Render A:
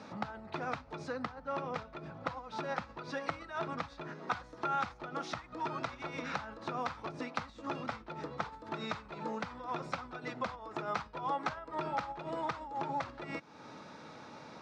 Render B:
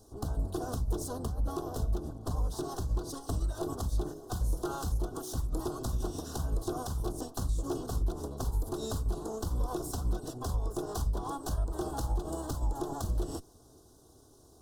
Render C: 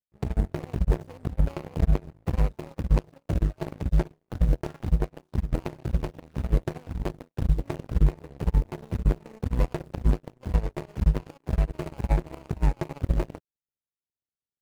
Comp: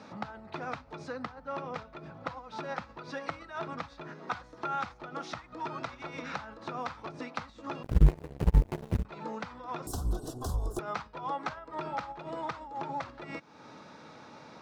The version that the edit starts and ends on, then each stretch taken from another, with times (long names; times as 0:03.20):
A
0:07.83–0:09.05: punch in from C
0:09.87–0:10.79: punch in from B